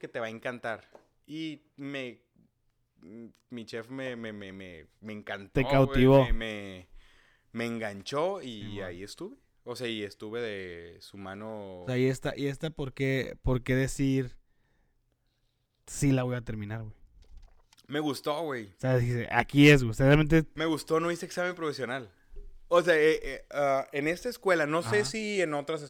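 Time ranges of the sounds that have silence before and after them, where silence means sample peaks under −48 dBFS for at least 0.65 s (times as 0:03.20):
0:03.03–0:14.37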